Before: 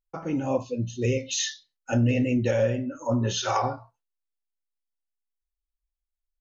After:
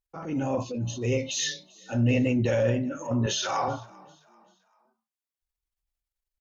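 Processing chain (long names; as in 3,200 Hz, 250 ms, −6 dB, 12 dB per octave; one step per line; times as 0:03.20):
0:03.26–0:03.68: high-pass filter 530 Hz 6 dB per octave
transient designer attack −8 dB, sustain +5 dB
harmonic generator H 2 −27 dB, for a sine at −13 dBFS
echo with shifted repeats 390 ms, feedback 40%, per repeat +36 Hz, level −24 dB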